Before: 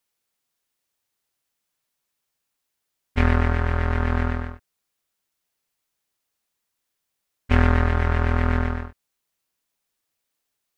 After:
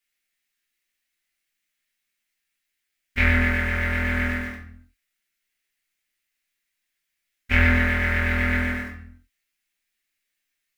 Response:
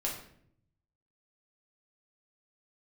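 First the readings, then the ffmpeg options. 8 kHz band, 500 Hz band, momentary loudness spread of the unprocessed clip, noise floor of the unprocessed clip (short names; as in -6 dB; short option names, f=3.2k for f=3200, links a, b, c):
n/a, -4.0 dB, 12 LU, -80 dBFS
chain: -filter_complex "[0:a]equalizer=f=125:t=o:w=1:g=-12,equalizer=f=500:t=o:w=1:g=-8,equalizer=f=1k:t=o:w=1:g=-11,equalizer=f=2k:t=o:w=1:g=12,asplit=2[a][b];[b]acrusher=bits=5:mix=0:aa=0.000001,volume=-10.5dB[c];[a][c]amix=inputs=2:normalize=0[d];[1:a]atrim=start_sample=2205,afade=t=out:st=0.42:d=0.01,atrim=end_sample=18963[e];[d][e]afir=irnorm=-1:irlink=0,volume=-4dB"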